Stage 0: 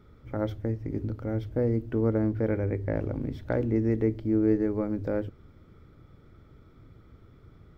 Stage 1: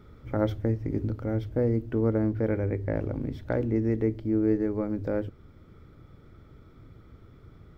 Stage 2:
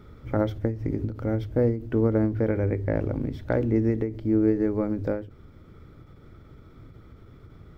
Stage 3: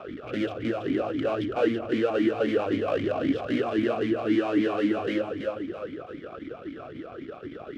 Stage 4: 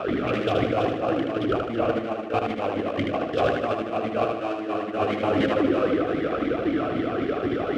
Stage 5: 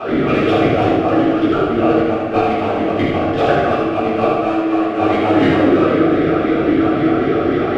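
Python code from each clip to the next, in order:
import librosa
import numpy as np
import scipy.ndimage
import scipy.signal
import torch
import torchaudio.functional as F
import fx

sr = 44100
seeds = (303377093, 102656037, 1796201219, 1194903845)

y1 = fx.rider(x, sr, range_db=4, speed_s=2.0)
y2 = fx.end_taper(y1, sr, db_per_s=120.0)
y2 = F.gain(torch.from_numpy(y2), 3.5).numpy()
y3 = fx.fuzz(y2, sr, gain_db=41.0, gate_db=-50.0)
y3 = fx.echo_feedback(y3, sr, ms=330, feedback_pct=43, wet_db=-6)
y3 = fx.vowel_sweep(y3, sr, vowels='a-i', hz=3.8)
y4 = fx.over_compress(y3, sr, threshold_db=-32.0, ratio=-0.5)
y4 = fx.echo_feedback(y4, sr, ms=77, feedback_pct=49, wet_db=-4)
y4 = F.gain(torch.from_numpy(y4), 6.5).numpy()
y5 = fx.room_shoebox(y4, sr, seeds[0], volume_m3=260.0, walls='mixed', distance_m=3.8)
y5 = F.gain(torch.from_numpy(y5), -2.0).numpy()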